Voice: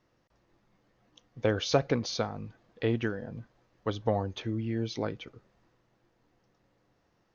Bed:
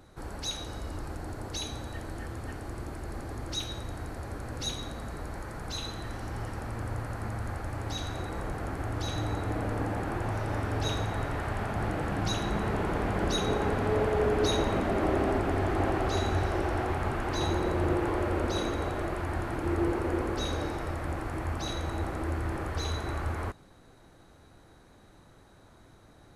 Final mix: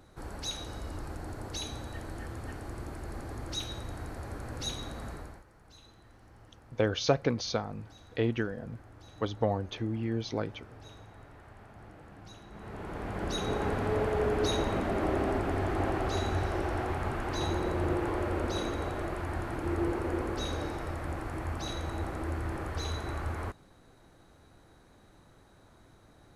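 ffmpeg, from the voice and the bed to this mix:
ffmpeg -i stem1.wav -i stem2.wav -filter_complex "[0:a]adelay=5350,volume=-0.5dB[link_01];[1:a]volume=15.5dB,afade=type=out:start_time=5.09:duration=0.35:silence=0.125893,afade=type=in:start_time=12.5:duration=1.15:silence=0.133352[link_02];[link_01][link_02]amix=inputs=2:normalize=0" out.wav

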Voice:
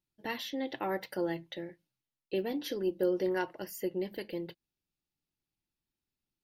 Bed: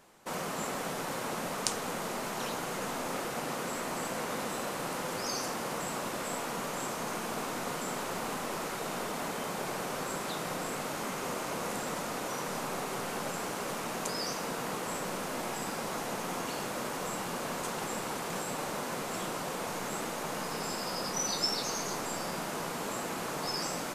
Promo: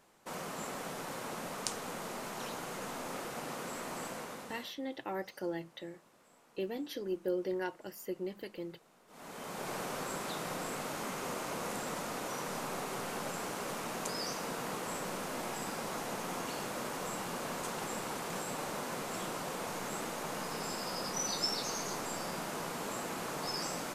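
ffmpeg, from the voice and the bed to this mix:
ffmpeg -i stem1.wav -i stem2.wav -filter_complex "[0:a]adelay=4250,volume=-4.5dB[link_01];[1:a]volume=20.5dB,afade=type=out:start_time=4.04:duration=0.72:silence=0.0668344,afade=type=in:start_time=9.07:duration=0.67:silence=0.0501187[link_02];[link_01][link_02]amix=inputs=2:normalize=0" out.wav

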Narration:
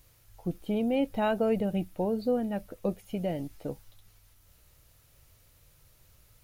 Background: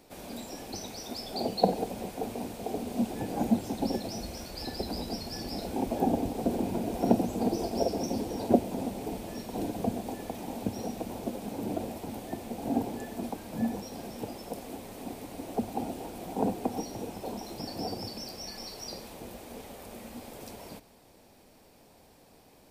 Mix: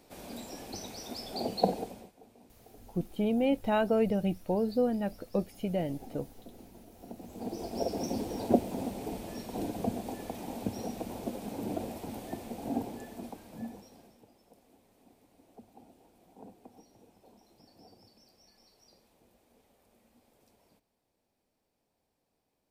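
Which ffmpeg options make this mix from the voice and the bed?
ffmpeg -i stem1.wav -i stem2.wav -filter_complex "[0:a]adelay=2500,volume=0dB[link_01];[1:a]volume=18dB,afade=type=out:start_time=1.69:duration=0.43:silence=0.1,afade=type=in:start_time=7.16:duration=0.9:silence=0.0944061,afade=type=out:start_time=12.28:duration=1.94:silence=0.0944061[link_02];[link_01][link_02]amix=inputs=2:normalize=0" out.wav

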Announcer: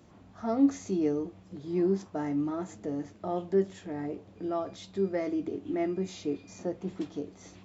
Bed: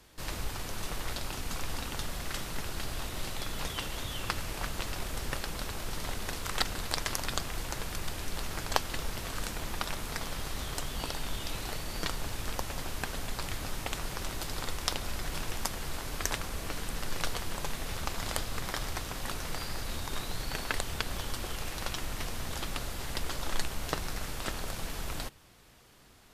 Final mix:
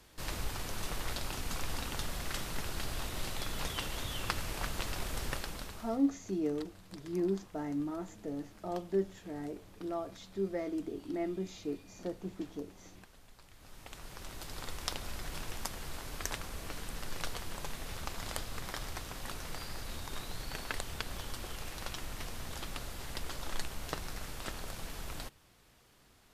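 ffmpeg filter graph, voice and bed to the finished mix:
ffmpeg -i stem1.wav -i stem2.wav -filter_complex "[0:a]adelay=5400,volume=-5.5dB[link_01];[1:a]volume=15.5dB,afade=type=out:start_time=5.25:duration=0.76:silence=0.0891251,afade=type=in:start_time=13.53:duration=1.29:silence=0.141254[link_02];[link_01][link_02]amix=inputs=2:normalize=0" out.wav

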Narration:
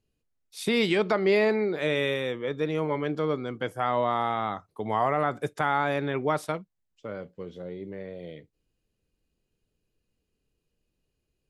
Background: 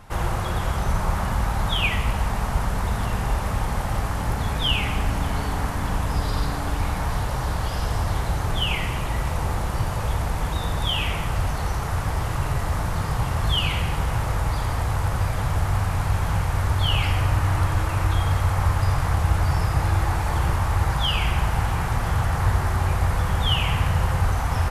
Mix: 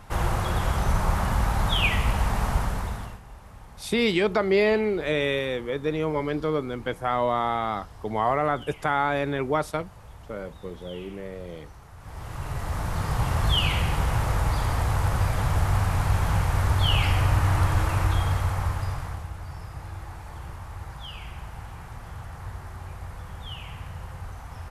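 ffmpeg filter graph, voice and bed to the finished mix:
ffmpeg -i stem1.wav -i stem2.wav -filter_complex "[0:a]adelay=3250,volume=1.5dB[link_01];[1:a]volume=20.5dB,afade=type=out:start_time=2.5:duration=0.7:silence=0.0891251,afade=type=in:start_time=11.98:duration=1.34:silence=0.0891251,afade=type=out:start_time=17.88:duration=1.42:silence=0.158489[link_02];[link_01][link_02]amix=inputs=2:normalize=0" out.wav

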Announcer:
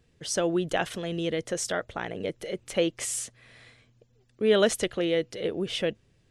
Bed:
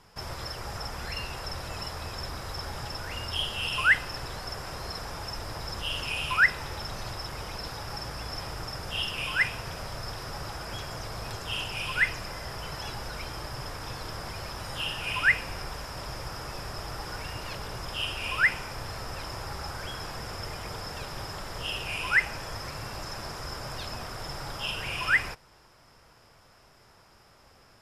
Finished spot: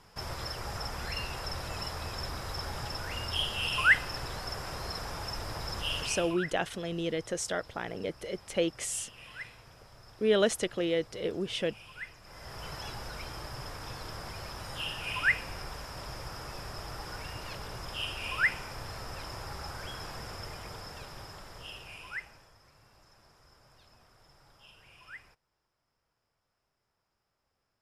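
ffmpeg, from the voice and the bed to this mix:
ffmpeg -i stem1.wav -i stem2.wav -filter_complex "[0:a]adelay=5800,volume=-3.5dB[link_01];[1:a]volume=13dB,afade=type=out:start_time=5.95:duration=0.42:silence=0.141254,afade=type=in:start_time=12.22:duration=0.44:silence=0.199526,afade=type=out:start_time=20.18:duration=2.36:silence=0.1[link_02];[link_01][link_02]amix=inputs=2:normalize=0" out.wav

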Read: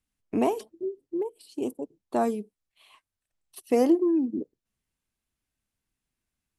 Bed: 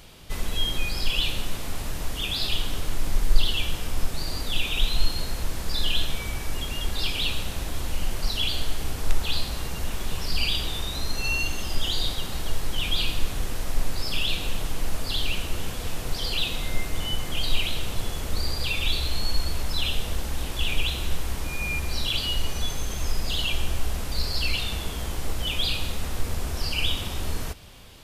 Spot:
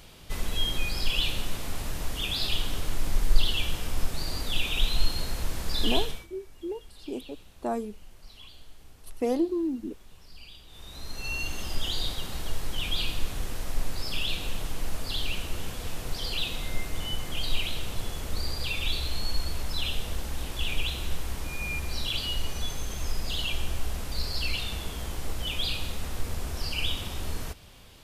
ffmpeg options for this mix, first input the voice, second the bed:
ffmpeg -i stem1.wav -i stem2.wav -filter_complex "[0:a]adelay=5500,volume=-5dB[link_01];[1:a]volume=17dB,afade=type=out:start_time=5.96:duration=0.31:silence=0.0891251,afade=type=in:start_time=10.67:duration=0.94:silence=0.112202[link_02];[link_01][link_02]amix=inputs=2:normalize=0" out.wav

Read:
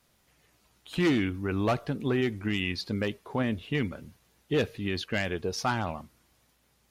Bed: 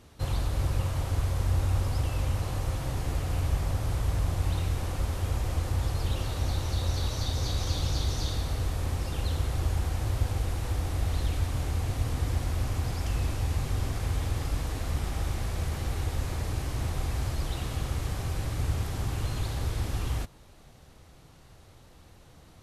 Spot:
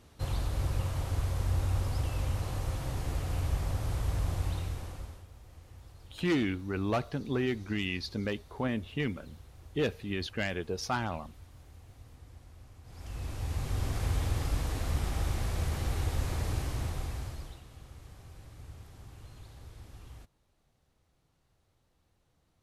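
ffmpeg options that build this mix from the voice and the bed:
ffmpeg -i stem1.wav -i stem2.wav -filter_complex "[0:a]adelay=5250,volume=-3.5dB[link_01];[1:a]volume=19dB,afade=type=out:start_time=4.35:duration=0.92:silence=0.1,afade=type=in:start_time=12.84:duration=1.18:silence=0.0749894,afade=type=out:start_time=16.53:duration=1.09:silence=0.125893[link_02];[link_01][link_02]amix=inputs=2:normalize=0" out.wav

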